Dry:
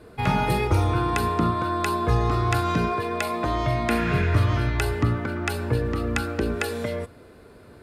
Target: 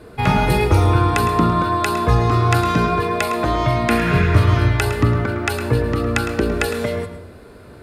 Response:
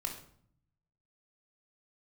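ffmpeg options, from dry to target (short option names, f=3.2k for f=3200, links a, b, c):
-filter_complex "[0:a]asplit=2[a][b];[1:a]atrim=start_sample=2205,adelay=108[c];[b][c]afir=irnorm=-1:irlink=0,volume=-10.5dB[d];[a][d]amix=inputs=2:normalize=0,volume=6dB"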